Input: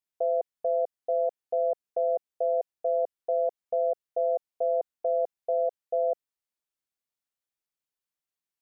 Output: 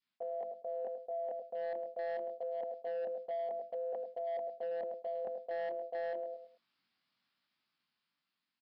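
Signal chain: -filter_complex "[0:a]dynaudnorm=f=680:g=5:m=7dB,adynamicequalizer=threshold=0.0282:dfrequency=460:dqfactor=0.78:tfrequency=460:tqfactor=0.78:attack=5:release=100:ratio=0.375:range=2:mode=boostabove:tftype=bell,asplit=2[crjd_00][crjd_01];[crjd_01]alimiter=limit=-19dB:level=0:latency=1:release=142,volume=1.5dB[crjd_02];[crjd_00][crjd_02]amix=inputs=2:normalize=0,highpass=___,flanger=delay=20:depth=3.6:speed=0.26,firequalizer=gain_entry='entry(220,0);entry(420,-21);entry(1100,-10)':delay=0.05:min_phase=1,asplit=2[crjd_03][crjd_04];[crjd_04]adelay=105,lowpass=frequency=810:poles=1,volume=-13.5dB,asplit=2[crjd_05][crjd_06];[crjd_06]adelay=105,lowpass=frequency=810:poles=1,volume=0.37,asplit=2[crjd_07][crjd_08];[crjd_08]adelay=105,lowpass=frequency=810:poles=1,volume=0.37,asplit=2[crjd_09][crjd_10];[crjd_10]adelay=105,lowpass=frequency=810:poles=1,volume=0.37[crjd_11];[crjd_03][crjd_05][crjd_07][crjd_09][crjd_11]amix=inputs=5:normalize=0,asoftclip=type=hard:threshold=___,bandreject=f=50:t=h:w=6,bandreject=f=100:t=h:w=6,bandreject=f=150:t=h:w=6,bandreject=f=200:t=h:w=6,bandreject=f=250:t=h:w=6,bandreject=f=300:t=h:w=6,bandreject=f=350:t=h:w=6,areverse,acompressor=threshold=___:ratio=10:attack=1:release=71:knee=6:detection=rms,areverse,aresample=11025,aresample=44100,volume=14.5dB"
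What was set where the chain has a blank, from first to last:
270, -31dB, -50dB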